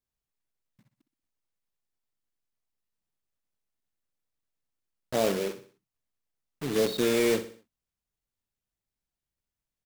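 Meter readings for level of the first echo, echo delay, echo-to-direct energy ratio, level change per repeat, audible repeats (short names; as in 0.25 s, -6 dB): -12.5 dB, 62 ms, -11.5 dB, -7.5 dB, 4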